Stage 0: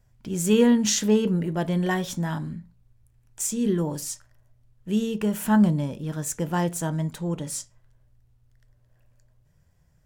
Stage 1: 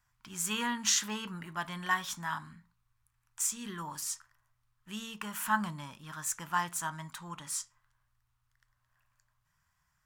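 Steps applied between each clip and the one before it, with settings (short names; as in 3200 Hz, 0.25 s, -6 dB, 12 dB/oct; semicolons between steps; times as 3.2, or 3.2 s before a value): resonant low shelf 740 Hz -14 dB, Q 3; gain -3.5 dB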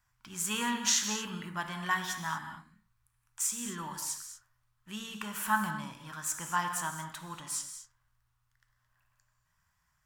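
non-linear reverb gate 0.26 s flat, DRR 6 dB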